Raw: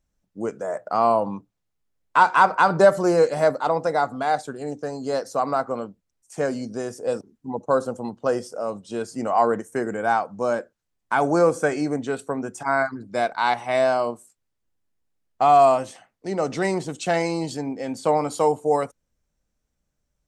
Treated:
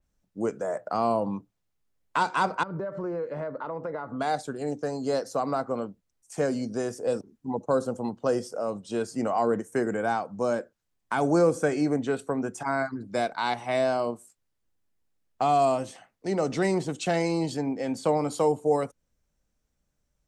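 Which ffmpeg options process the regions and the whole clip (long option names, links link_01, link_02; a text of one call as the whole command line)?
ffmpeg -i in.wav -filter_complex "[0:a]asettb=1/sr,asplit=3[link_01][link_02][link_03];[link_01]atrim=end=2.634[link_04];[link_02]atrim=start=2.63:end=4.2,asetpts=PTS-STARTPTS,afade=type=in:duration=0.004:curve=qsin,afade=type=out:start_time=1.566:duration=0.004:curve=qsin,lowpass=1700,equalizer=frequency=750:width=6.8:gain=-12.5,acompressor=threshold=-29dB:ratio=6:attack=3.2:release=140:knee=1:detection=peak[link_05];[link_03]atrim=start=4.196[link_06];[link_04][link_05]acrossfade=duration=0.004:curve1=hsin:curve2=qsin[link_07];[link_07][link_06]acrossfade=duration=0.004:curve1=qsin:curve2=hsin,acrossover=split=470|3000[link_08][link_09][link_10];[link_09]acompressor=threshold=-33dB:ratio=2[link_11];[link_08][link_11][link_10]amix=inputs=3:normalize=0,adynamicequalizer=threshold=0.00447:dfrequency=3900:dqfactor=0.7:tfrequency=3900:tqfactor=0.7:attack=5:release=100:ratio=0.375:range=2.5:mode=cutabove:tftype=highshelf" out.wav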